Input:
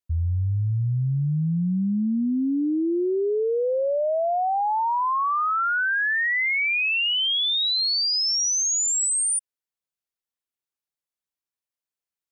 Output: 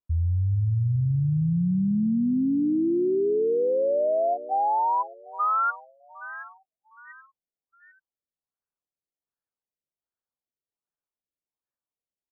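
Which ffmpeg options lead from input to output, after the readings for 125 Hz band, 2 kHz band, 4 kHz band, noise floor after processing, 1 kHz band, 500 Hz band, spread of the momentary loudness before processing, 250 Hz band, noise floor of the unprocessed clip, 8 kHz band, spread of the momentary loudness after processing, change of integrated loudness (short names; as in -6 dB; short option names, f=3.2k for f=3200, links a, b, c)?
0.0 dB, -19.0 dB, under -40 dB, under -85 dBFS, -2.0 dB, 0.0 dB, 5 LU, 0.0 dB, under -85 dBFS, under -40 dB, 10 LU, -2.5 dB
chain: -af "aecho=1:1:421|842|1263|1684|2105:0.168|0.0907|0.049|0.0264|0.0143,afftfilt=real='re*lt(b*sr/1024,660*pow(1900/660,0.5+0.5*sin(2*PI*1.3*pts/sr)))':imag='im*lt(b*sr/1024,660*pow(1900/660,0.5+0.5*sin(2*PI*1.3*pts/sr)))':win_size=1024:overlap=0.75"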